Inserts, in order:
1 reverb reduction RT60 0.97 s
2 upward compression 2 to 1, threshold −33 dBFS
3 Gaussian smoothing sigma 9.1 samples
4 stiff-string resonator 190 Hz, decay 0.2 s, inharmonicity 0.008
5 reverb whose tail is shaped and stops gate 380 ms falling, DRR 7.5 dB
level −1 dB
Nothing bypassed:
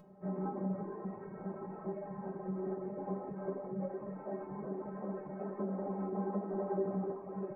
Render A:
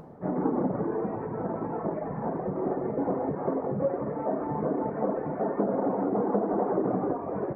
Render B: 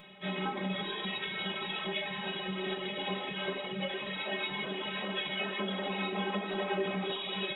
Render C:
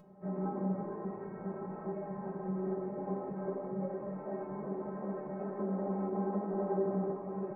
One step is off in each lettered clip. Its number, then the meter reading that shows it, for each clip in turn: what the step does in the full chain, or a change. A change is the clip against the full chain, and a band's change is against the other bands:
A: 4, 125 Hz band −4.0 dB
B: 3, 2 kHz band +24.0 dB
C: 1, change in integrated loudness +2.5 LU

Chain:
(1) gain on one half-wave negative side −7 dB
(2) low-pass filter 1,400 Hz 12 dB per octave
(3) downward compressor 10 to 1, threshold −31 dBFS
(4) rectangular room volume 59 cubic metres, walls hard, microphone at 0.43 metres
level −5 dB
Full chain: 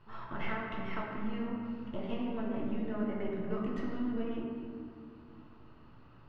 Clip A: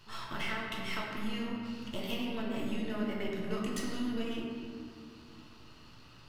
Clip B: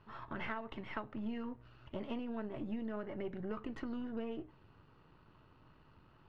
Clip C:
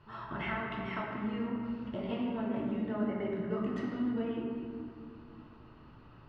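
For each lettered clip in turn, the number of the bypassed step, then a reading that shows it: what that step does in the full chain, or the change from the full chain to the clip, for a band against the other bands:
2, 4 kHz band +13.0 dB
4, echo-to-direct ratio 3.0 dB to none audible
1, distortion level −9 dB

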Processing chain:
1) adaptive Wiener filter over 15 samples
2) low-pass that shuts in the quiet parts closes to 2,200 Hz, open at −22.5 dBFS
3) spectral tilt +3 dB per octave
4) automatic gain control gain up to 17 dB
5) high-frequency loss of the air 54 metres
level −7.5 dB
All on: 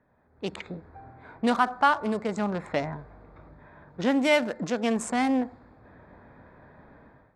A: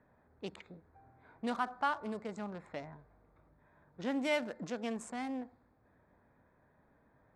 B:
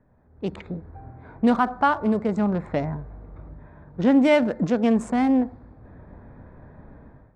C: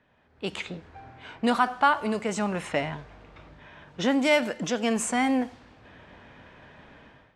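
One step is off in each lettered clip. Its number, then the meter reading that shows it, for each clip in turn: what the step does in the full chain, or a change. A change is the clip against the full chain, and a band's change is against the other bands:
4, change in integrated loudness −12.0 LU
3, 4 kHz band −7.5 dB
1, 8 kHz band +6.0 dB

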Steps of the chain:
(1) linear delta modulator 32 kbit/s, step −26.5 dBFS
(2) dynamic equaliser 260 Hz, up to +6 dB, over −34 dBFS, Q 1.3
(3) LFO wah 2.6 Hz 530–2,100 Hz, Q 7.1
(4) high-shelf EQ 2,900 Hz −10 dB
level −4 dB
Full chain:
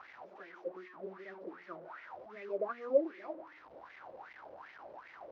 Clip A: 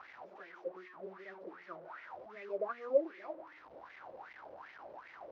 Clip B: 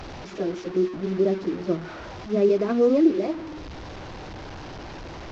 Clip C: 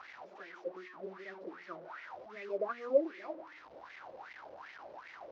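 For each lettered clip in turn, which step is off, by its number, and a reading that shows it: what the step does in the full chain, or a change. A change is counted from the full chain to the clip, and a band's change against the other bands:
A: 2, change in integrated loudness −2.5 LU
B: 3, 250 Hz band +14.5 dB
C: 4, 2 kHz band +2.5 dB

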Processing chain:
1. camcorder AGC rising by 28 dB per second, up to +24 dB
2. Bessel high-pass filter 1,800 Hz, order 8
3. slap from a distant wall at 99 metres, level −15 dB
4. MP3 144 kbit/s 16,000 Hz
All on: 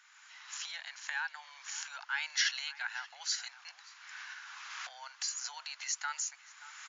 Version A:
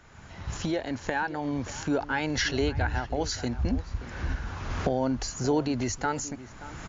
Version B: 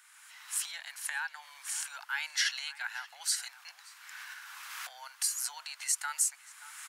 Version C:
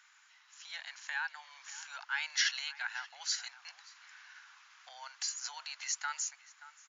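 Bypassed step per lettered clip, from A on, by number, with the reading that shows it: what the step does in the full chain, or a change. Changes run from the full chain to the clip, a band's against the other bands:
2, 500 Hz band +34.5 dB
4, 8 kHz band +5.5 dB
1, change in momentary loudness spread +5 LU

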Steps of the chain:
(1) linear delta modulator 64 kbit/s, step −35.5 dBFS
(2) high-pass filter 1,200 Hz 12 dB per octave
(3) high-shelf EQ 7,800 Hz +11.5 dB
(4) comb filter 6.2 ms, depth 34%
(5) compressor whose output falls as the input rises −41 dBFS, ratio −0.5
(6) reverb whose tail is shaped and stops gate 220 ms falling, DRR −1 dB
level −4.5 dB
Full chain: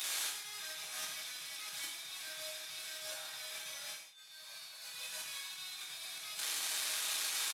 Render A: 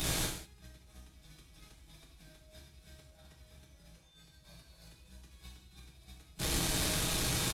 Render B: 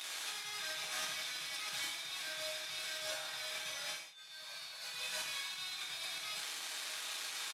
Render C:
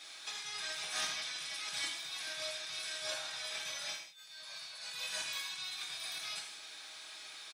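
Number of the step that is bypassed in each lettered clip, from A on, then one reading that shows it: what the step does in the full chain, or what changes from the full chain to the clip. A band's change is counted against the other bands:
2, 250 Hz band +24.5 dB
3, 8 kHz band −6.5 dB
1, 8 kHz band −6.0 dB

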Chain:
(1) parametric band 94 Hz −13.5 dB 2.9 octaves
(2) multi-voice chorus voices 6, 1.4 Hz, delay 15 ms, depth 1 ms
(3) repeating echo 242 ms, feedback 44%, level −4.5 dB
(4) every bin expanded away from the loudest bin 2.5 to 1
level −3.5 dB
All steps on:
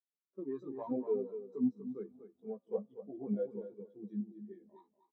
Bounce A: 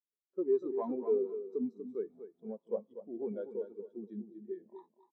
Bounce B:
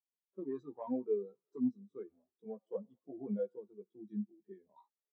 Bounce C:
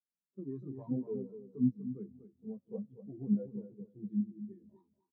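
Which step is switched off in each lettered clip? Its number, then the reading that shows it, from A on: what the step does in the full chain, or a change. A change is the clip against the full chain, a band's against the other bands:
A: 2, change in integrated loudness +2.0 LU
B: 3, change in momentary loudness spread +2 LU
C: 1, change in crest factor +2.0 dB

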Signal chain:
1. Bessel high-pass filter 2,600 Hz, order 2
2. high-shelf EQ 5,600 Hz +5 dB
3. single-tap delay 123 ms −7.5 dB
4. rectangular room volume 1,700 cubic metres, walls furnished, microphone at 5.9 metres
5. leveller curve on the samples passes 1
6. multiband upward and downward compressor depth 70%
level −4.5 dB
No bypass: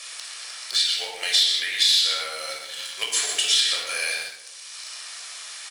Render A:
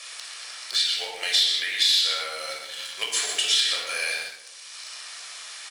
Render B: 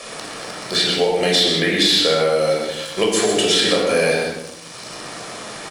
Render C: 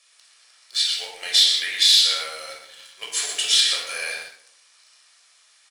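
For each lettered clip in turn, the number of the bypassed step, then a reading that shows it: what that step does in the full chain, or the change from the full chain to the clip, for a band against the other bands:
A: 2, 8 kHz band −2.5 dB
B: 1, 500 Hz band +20.0 dB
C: 6, change in crest factor +2.0 dB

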